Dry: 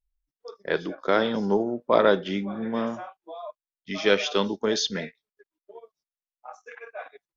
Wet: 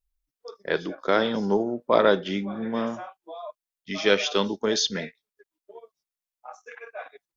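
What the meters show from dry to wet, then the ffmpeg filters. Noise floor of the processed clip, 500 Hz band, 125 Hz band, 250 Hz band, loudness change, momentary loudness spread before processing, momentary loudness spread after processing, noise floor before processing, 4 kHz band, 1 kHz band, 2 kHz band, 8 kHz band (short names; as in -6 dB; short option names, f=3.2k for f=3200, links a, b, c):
under -85 dBFS, 0.0 dB, 0.0 dB, 0.0 dB, +0.5 dB, 19 LU, 19 LU, under -85 dBFS, +1.5 dB, 0.0 dB, +0.5 dB, n/a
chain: -af "highshelf=f=4.6k:g=4.5"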